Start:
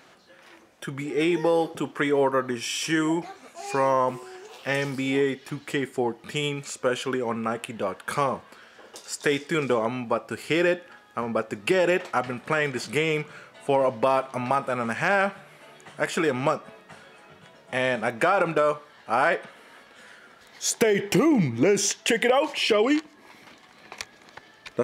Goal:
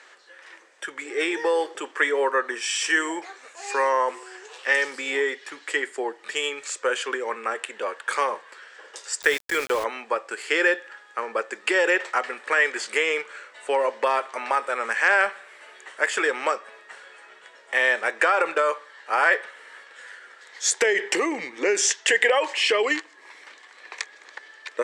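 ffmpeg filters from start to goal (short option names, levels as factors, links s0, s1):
-filter_complex "[0:a]highpass=f=420:w=0.5412,highpass=f=420:w=1.3066,equalizer=f=690:t=q:w=4:g=-8,equalizer=f=1800:t=q:w=4:g=8,equalizer=f=7900:t=q:w=4:g=6,lowpass=f=8900:w=0.5412,lowpass=f=8900:w=1.3066,asettb=1/sr,asplit=3[s0][s1][s2];[s0]atrim=end=9.224[s3];[s1]atrim=start=9.22:end=9.84,asetpts=PTS-STARTPTS,afade=t=in:d=0.004:c=qsin,afade=t=out:st=0.616:d=0.004:c=qsin,aeval=exprs='val(0)*gte(abs(val(0)),0.0251)':c=same[s4];[s2]atrim=start=9.836[s5];[s3][s4]acrossfade=d=0.004:c1=hsin:c2=qsin[s6];[s6][s5]acrossfade=d=0.004:c1=qsin:c2=hsin,volume=1.26"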